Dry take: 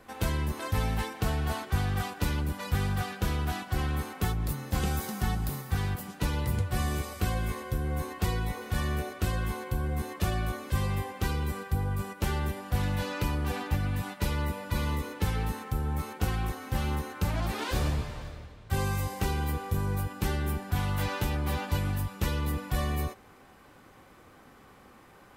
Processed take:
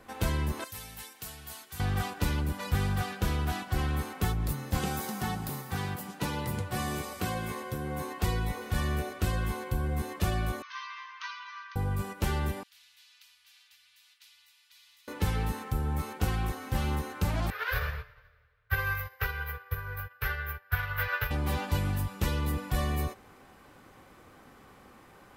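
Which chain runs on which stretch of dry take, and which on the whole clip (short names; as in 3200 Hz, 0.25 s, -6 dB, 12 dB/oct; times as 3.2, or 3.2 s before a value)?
0.64–1.8 HPF 50 Hz + pre-emphasis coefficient 0.9
4.77–8.23 HPF 130 Hz + bell 880 Hz +3 dB 0.41 oct
10.62–11.76 brick-wall FIR band-pass 900–6500 Hz + air absorption 78 m
12.63–15.08 inverse Chebyshev high-pass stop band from 620 Hz, stop band 80 dB + air absorption 340 m + spectral compressor 2:1
17.5–21.31 EQ curve 130 Hz 0 dB, 190 Hz -24 dB, 310 Hz -28 dB, 440 Hz +3 dB, 810 Hz -5 dB, 1500 Hz +15 dB, 3300 Hz +1 dB, 5200 Hz -3 dB, 8800 Hz -21 dB, 13000 Hz +10 dB + upward expander 2.5:1, over -38 dBFS
whole clip: dry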